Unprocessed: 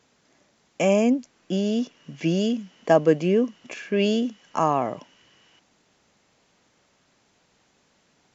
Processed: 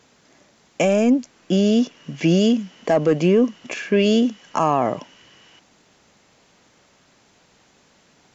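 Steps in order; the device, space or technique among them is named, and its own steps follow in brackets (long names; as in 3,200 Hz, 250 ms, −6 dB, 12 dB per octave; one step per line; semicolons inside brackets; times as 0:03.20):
soft clipper into limiter (soft clipping −9 dBFS, distortion −20 dB; brickwall limiter −16.5 dBFS, peak gain reduction 6.5 dB)
level +7.5 dB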